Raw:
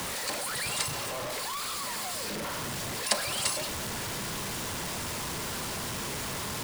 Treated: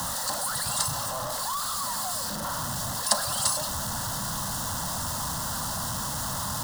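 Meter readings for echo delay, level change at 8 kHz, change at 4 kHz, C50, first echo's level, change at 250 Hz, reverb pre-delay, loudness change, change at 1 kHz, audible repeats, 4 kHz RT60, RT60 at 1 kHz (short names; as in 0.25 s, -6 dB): none, +5.0 dB, +1.5 dB, none, none, +1.5 dB, none, +3.5 dB, +5.5 dB, none, none, none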